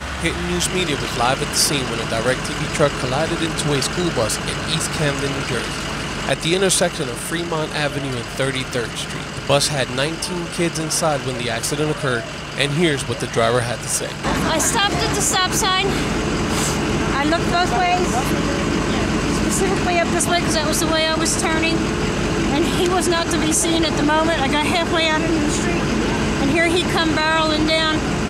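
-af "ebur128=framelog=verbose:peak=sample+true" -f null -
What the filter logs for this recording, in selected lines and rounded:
Integrated loudness:
  I:         -18.8 LUFS
  Threshold: -28.8 LUFS
Loudness range:
  LRA:         3.1 LU
  Threshold: -38.9 LUFS
  LRA low:   -20.6 LUFS
  LRA high:  -17.5 LUFS
Sample peak:
  Peak:       -3.0 dBFS
True peak:
  Peak:       -2.9 dBFS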